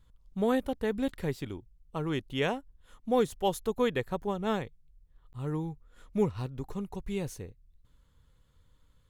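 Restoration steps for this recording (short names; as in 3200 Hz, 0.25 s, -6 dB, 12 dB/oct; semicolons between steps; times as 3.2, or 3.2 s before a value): interpolate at 5.33, 8.8 ms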